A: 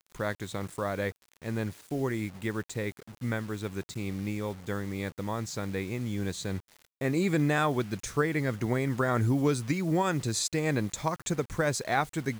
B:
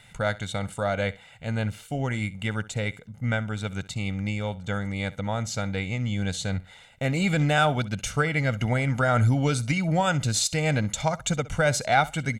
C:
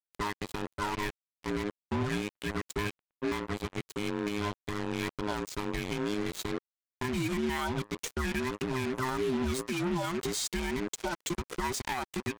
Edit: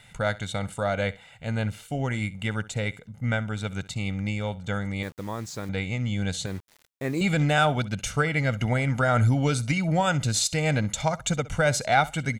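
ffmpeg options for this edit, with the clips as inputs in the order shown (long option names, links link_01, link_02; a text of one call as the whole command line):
ffmpeg -i take0.wav -i take1.wav -filter_complex "[0:a]asplit=2[link_01][link_02];[1:a]asplit=3[link_03][link_04][link_05];[link_03]atrim=end=5.032[link_06];[link_01]atrim=start=5.028:end=5.692[link_07];[link_04]atrim=start=5.688:end=6.462[link_08];[link_02]atrim=start=6.458:end=7.212[link_09];[link_05]atrim=start=7.208[link_10];[link_06][link_07]acrossfade=duration=0.004:curve1=hsin:curve2=hsin[link_11];[link_11][link_08]acrossfade=duration=0.004:curve1=hsin:curve2=hsin[link_12];[link_12][link_09]acrossfade=duration=0.004:curve1=hsin:curve2=hsin[link_13];[link_13][link_10]acrossfade=duration=0.004:curve1=hsin:curve2=hsin" out.wav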